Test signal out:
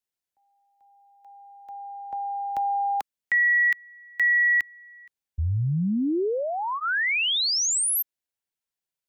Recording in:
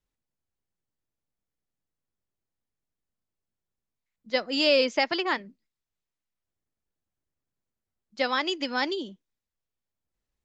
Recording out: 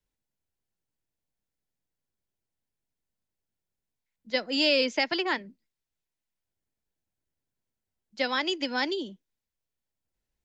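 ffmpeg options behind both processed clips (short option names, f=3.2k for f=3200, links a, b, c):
-filter_complex "[0:a]bandreject=f=1.2k:w=7,acrossover=split=230|450|1200[a][b][c][d];[c]acompressor=threshold=-32dB:ratio=6[e];[a][b][e][d]amix=inputs=4:normalize=0"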